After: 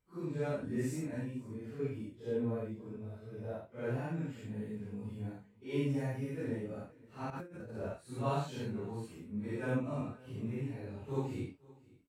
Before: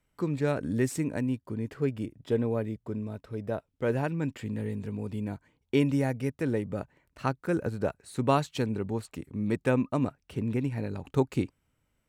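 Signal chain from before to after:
random phases in long frames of 200 ms
harmonic and percussive parts rebalanced percussive −7 dB
0:07.30–0:07.75: compressor whose output falls as the input rises −40 dBFS, ratio −1
on a send: single-tap delay 518 ms −22.5 dB
on the sum: level −7 dB

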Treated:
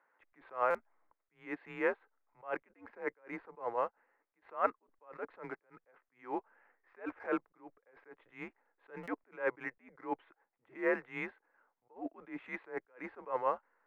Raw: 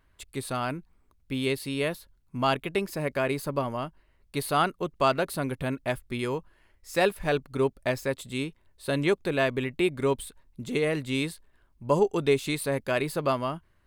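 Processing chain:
single-sideband voice off tune −110 Hz 550–2,100 Hz
in parallel at −11.5 dB: slack as between gear wheels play −46 dBFS
on the sum: buffer that repeats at 0:00.70/0:09.03, samples 256, times 7
level that may rise only so fast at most 210 dB per second

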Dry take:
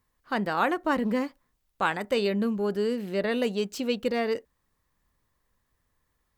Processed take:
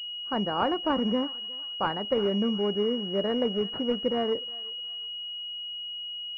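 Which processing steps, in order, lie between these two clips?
feedback echo with a high-pass in the loop 362 ms, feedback 48%, high-pass 1,100 Hz, level −16.5 dB
switching amplifier with a slow clock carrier 2,900 Hz

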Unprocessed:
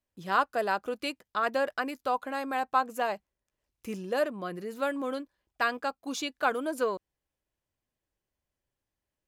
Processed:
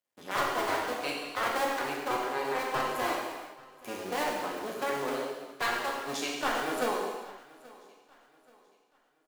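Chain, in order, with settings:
sub-harmonics by changed cycles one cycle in 2, muted
high-pass filter 270 Hz 12 dB per octave
soft clipping −22 dBFS, distortion −13 dB
on a send: repeating echo 830 ms, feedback 36%, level −22 dB
on the sum: reverb whose tail is shaped and stops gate 470 ms falling, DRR −3 dB

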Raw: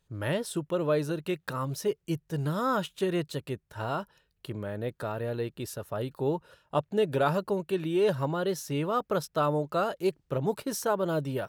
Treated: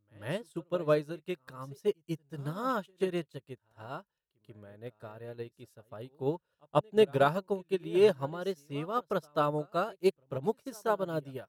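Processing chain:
on a send: backwards echo 138 ms −14 dB
on the sum: expander for the loud parts 2.5 to 1, over −40 dBFS
level +3.5 dB

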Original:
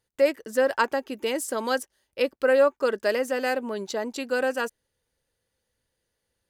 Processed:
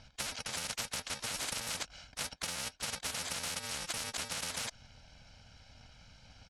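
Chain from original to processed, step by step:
samples in bit-reversed order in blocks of 128 samples
low-pass filter 5,000 Hz 24 dB per octave
comb filter 1.3 ms, depth 76%
downward compressor 6 to 1, threshold −33 dBFS, peak gain reduction 11.5 dB
every bin compressed towards the loudest bin 10 to 1

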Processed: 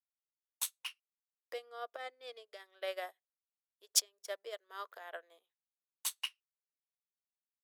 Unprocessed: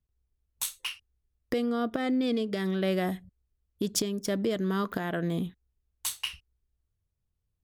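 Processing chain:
Butterworth high-pass 510 Hz 36 dB per octave
expander for the loud parts 2.5 to 1, over −47 dBFS
level +2 dB

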